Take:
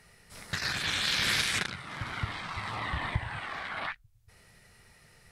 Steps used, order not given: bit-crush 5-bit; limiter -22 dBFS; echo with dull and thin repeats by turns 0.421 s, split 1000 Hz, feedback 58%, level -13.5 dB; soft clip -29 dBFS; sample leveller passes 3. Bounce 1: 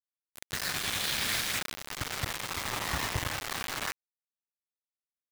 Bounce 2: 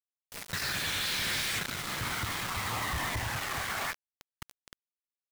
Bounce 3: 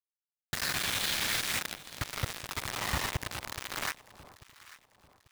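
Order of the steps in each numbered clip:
sample leveller > limiter > echo with dull and thin repeats by turns > soft clip > bit-crush; echo with dull and thin repeats by turns > sample leveller > limiter > bit-crush > soft clip; limiter > sample leveller > soft clip > bit-crush > echo with dull and thin repeats by turns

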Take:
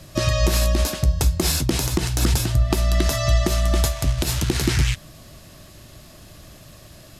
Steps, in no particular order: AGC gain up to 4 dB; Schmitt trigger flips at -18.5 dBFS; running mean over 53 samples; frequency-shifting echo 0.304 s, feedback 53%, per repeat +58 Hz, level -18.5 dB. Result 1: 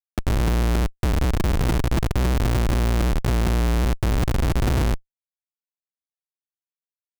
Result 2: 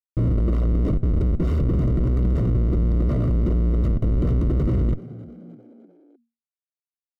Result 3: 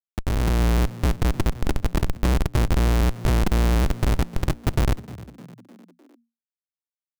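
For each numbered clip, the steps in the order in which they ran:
running mean > frequency-shifting echo > AGC > Schmitt trigger; AGC > Schmitt trigger > running mean > frequency-shifting echo; running mean > Schmitt trigger > frequency-shifting echo > AGC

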